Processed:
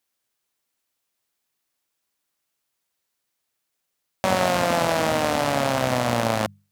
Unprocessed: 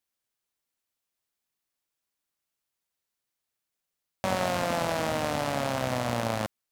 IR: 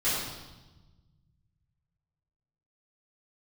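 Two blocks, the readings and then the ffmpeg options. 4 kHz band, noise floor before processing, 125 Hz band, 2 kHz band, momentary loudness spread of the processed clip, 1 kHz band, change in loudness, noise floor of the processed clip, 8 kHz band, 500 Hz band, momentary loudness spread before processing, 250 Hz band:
+7.0 dB, under -85 dBFS, +5.0 dB, +7.0 dB, 4 LU, +7.0 dB, +7.0 dB, -79 dBFS, +7.0 dB, +7.0 dB, 4 LU, +6.5 dB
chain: -af "lowshelf=f=71:g=-6,bandreject=f=50:t=h:w=6,bandreject=f=100:t=h:w=6,bandreject=f=150:t=h:w=6,bandreject=f=200:t=h:w=6,volume=7dB"

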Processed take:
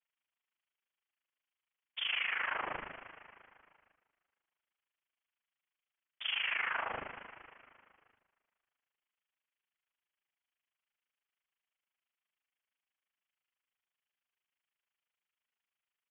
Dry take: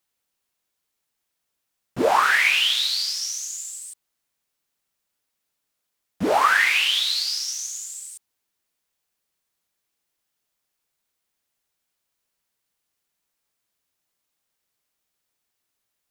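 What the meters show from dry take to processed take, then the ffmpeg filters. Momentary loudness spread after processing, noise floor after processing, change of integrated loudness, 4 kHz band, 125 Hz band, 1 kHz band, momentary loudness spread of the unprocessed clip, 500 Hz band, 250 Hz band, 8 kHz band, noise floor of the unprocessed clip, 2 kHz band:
18 LU, under -85 dBFS, -15.5 dB, -18.5 dB, -19.0 dB, -19.0 dB, 18 LU, -22.5 dB, -25.5 dB, under -40 dB, -79 dBFS, -15.5 dB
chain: -filter_complex "[0:a]afftfilt=real='re*lt(hypot(re,im),0.447)':imag='im*lt(hypot(re,im),0.447)':win_size=1024:overlap=0.75,tremolo=f=26:d=0.889,acrossover=split=360 2700:gain=0.2 1 0.0794[a][b][c];[a][b][c]amix=inputs=3:normalize=0,alimiter=limit=-24dB:level=0:latency=1:release=18,acontrast=46,asplit=2[d][e];[e]asplit=5[f][g][h][i][j];[f]adelay=231,afreqshift=75,volume=-17dB[k];[g]adelay=462,afreqshift=150,volume=-21.7dB[l];[h]adelay=693,afreqshift=225,volume=-26.5dB[m];[i]adelay=924,afreqshift=300,volume=-31.2dB[n];[j]adelay=1155,afreqshift=375,volume=-35.9dB[o];[k][l][m][n][o]amix=inputs=5:normalize=0[p];[d][p]amix=inputs=2:normalize=0,lowpass=f=3.1k:t=q:w=0.5098,lowpass=f=3.1k:t=q:w=0.6013,lowpass=f=3.1k:t=q:w=0.9,lowpass=f=3.1k:t=q:w=2.563,afreqshift=-3700,volume=-7dB"

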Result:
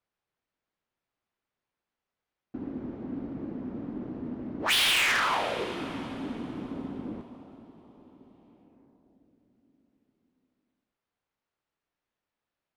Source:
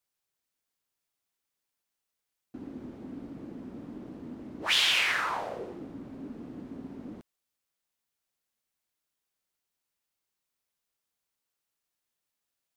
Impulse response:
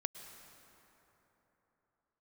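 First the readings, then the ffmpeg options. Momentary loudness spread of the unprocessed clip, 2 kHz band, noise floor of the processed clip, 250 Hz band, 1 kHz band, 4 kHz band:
20 LU, +2.5 dB, under -85 dBFS, +5.5 dB, +4.5 dB, +1.0 dB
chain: -filter_complex "[0:a]adynamicsmooth=sensitivity=4.5:basefreq=2.6k,asplit=2[a][b];[1:a]atrim=start_sample=2205,asetrate=25137,aresample=44100[c];[b][c]afir=irnorm=-1:irlink=0,volume=-2.5dB[d];[a][d]amix=inputs=2:normalize=0,volume=21.5dB,asoftclip=hard,volume=-21.5dB"

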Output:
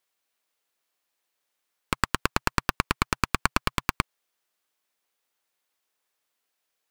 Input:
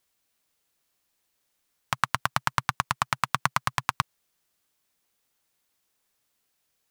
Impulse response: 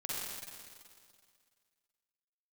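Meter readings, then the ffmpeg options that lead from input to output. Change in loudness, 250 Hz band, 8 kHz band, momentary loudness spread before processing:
+0.5 dB, +9.5 dB, +1.5 dB, 5 LU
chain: -af "bass=f=250:g=-14,treble=f=4k:g=-4,aeval=exprs='0.631*(cos(1*acos(clip(val(0)/0.631,-1,1)))-cos(1*PI/2))+0.224*(cos(6*acos(clip(val(0)/0.631,-1,1)))-cos(6*PI/2))':c=same,volume=-1.5dB"

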